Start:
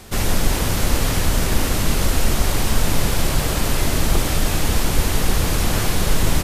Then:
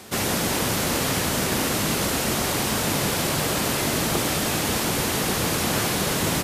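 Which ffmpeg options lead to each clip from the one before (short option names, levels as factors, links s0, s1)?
-af "highpass=150"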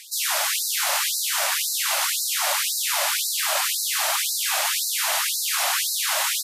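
-af "afftfilt=real='re*gte(b*sr/1024,530*pow(3900/530,0.5+0.5*sin(2*PI*1.9*pts/sr)))':imag='im*gte(b*sr/1024,530*pow(3900/530,0.5+0.5*sin(2*PI*1.9*pts/sr)))':win_size=1024:overlap=0.75,volume=1.5"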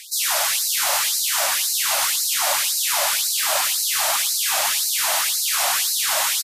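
-filter_complex "[0:a]aecho=1:1:113|226:0.1|0.015,acrossover=split=1100|3900[s0][s1][s2];[s1]asoftclip=type=tanh:threshold=0.0398[s3];[s0][s3][s2]amix=inputs=3:normalize=0,volume=1.5"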